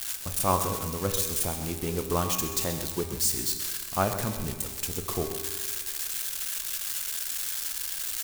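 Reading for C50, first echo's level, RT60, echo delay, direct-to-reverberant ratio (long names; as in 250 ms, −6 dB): 6.0 dB, −12.0 dB, 1.7 s, 131 ms, 4.5 dB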